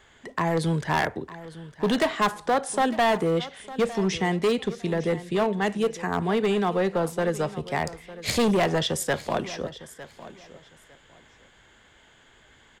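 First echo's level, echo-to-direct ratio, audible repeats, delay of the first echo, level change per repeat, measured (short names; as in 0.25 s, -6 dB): -16.5 dB, -16.5 dB, 2, 0.905 s, -13.0 dB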